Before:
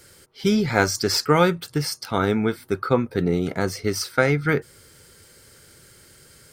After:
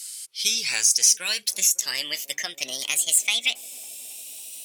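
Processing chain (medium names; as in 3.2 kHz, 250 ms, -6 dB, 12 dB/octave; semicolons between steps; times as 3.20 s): gliding tape speed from 96% -> 185%; pre-emphasis filter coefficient 0.97; compression 2.5:1, threshold -35 dBFS, peak gain reduction 10 dB; high-order bell 5 kHz +15 dB 2.7 oct; feedback echo behind a band-pass 275 ms, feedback 79%, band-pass 400 Hz, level -16 dB; trim +2 dB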